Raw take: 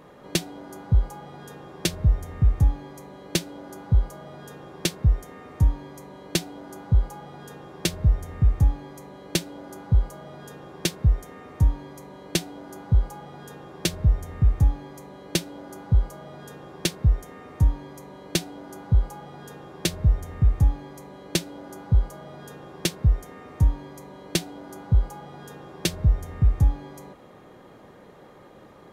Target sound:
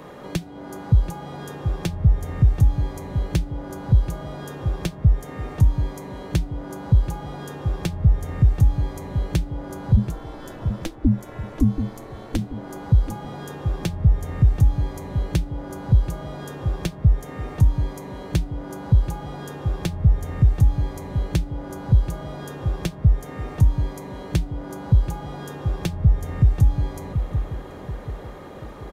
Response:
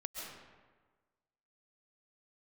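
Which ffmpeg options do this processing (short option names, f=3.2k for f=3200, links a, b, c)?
-filter_complex "[0:a]acrossover=split=160|3700[a][b][c];[a]acompressor=threshold=-21dB:ratio=4[d];[b]acompressor=threshold=-42dB:ratio=4[e];[c]acompressor=threshold=-52dB:ratio=4[f];[d][e][f]amix=inputs=3:normalize=0,asplit=3[g][h][i];[g]afade=t=out:st=9.96:d=0.02[j];[h]aeval=exprs='val(0)*sin(2*PI*160*n/s)':c=same,afade=t=in:st=9.96:d=0.02,afade=t=out:st=12.37:d=0.02[k];[i]afade=t=in:st=12.37:d=0.02[l];[j][k][l]amix=inputs=3:normalize=0,asplit=2[m][n];[n]adelay=732,lowpass=f=1.4k:p=1,volume=-8dB,asplit=2[o][p];[p]adelay=732,lowpass=f=1.4k:p=1,volume=0.4,asplit=2[q][r];[r]adelay=732,lowpass=f=1.4k:p=1,volume=0.4,asplit=2[s][t];[t]adelay=732,lowpass=f=1.4k:p=1,volume=0.4,asplit=2[u][v];[v]adelay=732,lowpass=f=1.4k:p=1,volume=0.4[w];[m][o][q][s][u][w]amix=inputs=6:normalize=0,volume=8.5dB"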